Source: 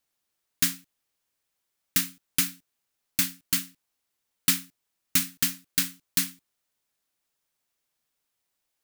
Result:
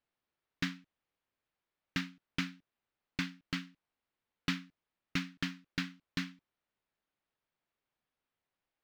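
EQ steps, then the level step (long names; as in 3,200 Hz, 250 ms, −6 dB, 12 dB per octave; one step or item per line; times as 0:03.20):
high-frequency loss of the air 230 metres
high-shelf EQ 6,000 Hz −9 dB
−1.5 dB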